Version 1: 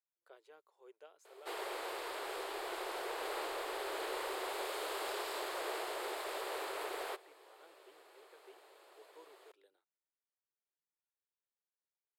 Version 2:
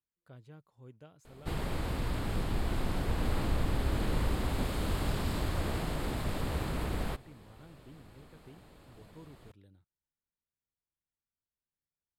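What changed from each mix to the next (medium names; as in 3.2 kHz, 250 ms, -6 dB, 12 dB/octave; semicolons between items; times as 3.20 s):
master: remove elliptic high-pass 380 Hz, stop band 40 dB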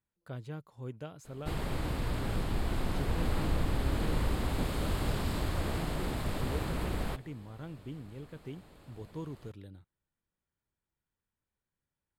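speech +11.0 dB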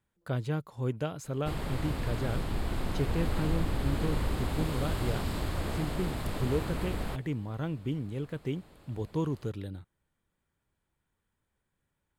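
speech +10.0 dB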